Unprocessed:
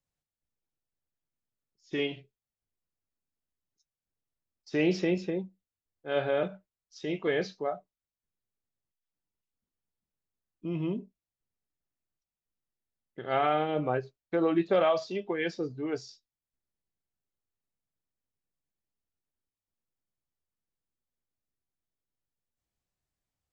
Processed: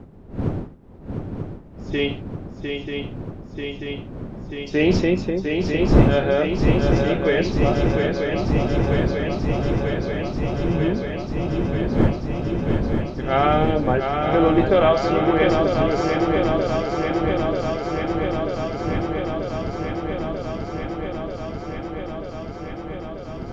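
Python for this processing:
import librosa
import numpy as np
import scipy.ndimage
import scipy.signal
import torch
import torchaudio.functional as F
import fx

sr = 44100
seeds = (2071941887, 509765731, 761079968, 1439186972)

y = fx.dmg_wind(x, sr, seeds[0], corner_hz=250.0, level_db=-37.0)
y = fx.echo_swing(y, sr, ms=938, ratio=3, feedback_pct=80, wet_db=-5.5)
y = y * librosa.db_to_amplitude(8.0)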